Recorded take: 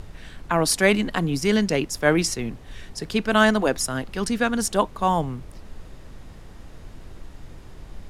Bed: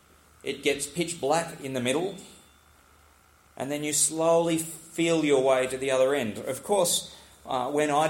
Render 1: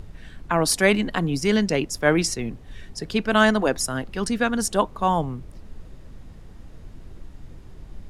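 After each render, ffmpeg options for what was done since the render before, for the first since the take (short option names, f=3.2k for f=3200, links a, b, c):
-af "afftdn=nr=6:nf=-43"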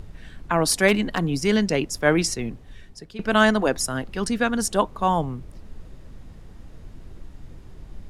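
-filter_complex "[0:a]asettb=1/sr,asplit=3[a][b][c];[a]atrim=end=0.884[d];[b]atrim=start=0.88:end=1.59,asetpts=PTS-STARTPTS,afade=t=in:d=0.004:c=qsin,afade=t=out:st=0.706:d=0.004:c=qsin,aeval=exprs='0.316*(abs(mod(val(0)/0.316+3,4)-2)-1)':c=same[e];[c]atrim=start=1.586[f];[d][e]acrossfade=d=0.004:c1=hsin:c2=qsin[g];[g][f]acrossfade=d=0.004:c1=qsin:c2=hsin,asplit=2[h][i];[h]atrim=end=3.19,asetpts=PTS-STARTPTS,afade=t=out:st=2.45:d=0.74:silence=0.141254[j];[i]atrim=start=3.19,asetpts=PTS-STARTPTS,afade=t=in:d=0.004:c=hsin:silence=0.141254[k];[j][k]concat=n=2:v=0:a=1"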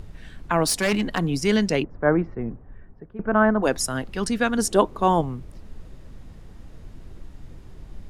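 -filter_complex "[0:a]asplit=3[a][b][c];[a]afade=t=out:st=0.63:d=0.02[d];[b]asoftclip=type=hard:threshold=-18dB,afade=t=in:st=0.63:d=0.02,afade=t=out:st=1.06:d=0.02[e];[c]afade=t=in:st=1.06:d=0.02[f];[d][e][f]amix=inputs=3:normalize=0,asplit=3[g][h][i];[g]afade=t=out:st=1.82:d=0.02[j];[h]lowpass=f=1.5k:w=0.5412,lowpass=f=1.5k:w=1.3066,afade=t=in:st=1.82:d=0.02,afade=t=out:st=3.62:d=0.02[k];[i]afade=t=in:st=3.62:d=0.02[l];[j][k][l]amix=inputs=3:normalize=0,asettb=1/sr,asplit=3[m][n][o];[m]atrim=end=4.584[p];[n]atrim=start=4.58:end=5.21,asetpts=PTS-STARTPTS,afade=t=in:d=0.004:c=qsin,afade=t=out:st=0.626:d=0.004:c=qsin,equalizer=f=360:w=1.5:g=8[q];[o]atrim=start=5.206[r];[p][q]acrossfade=d=0.004:c1=hsin:c2=qsin[s];[s][r]acrossfade=d=0.004:c1=qsin:c2=hsin"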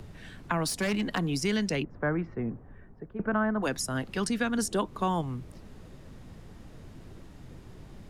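-filter_complex "[0:a]acrossover=split=83|250|1100[a][b][c][d];[a]acompressor=threshold=-50dB:ratio=4[e];[b]acompressor=threshold=-31dB:ratio=4[f];[c]acompressor=threshold=-34dB:ratio=4[g];[d]acompressor=threshold=-32dB:ratio=4[h];[e][f][g][h]amix=inputs=4:normalize=0"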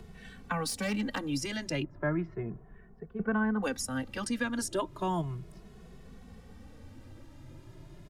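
-filter_complex "[0:a]asplit=2[a][b];[b]adelay=2.3,afreqshift=0.34[c];[a][c]amix=inputs=2:normalize=1"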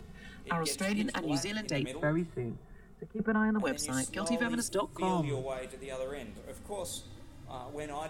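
-filter_complex "[1:a]volume=-15.5dB[a];[0:a][a]amix=inputs=2:normalize=0"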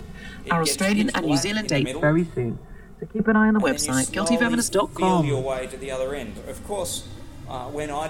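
-af "volume=11dB"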